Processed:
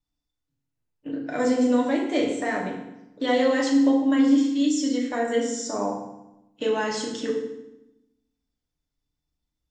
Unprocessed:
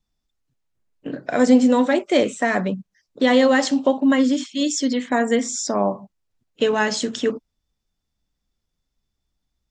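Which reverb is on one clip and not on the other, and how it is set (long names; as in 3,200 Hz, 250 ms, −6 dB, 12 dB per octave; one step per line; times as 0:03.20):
feedback delay network reverb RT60 0.9 s, low-frequency decay 1.35×, high-frequency decay 0.85×, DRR −2 dB
level −10 dB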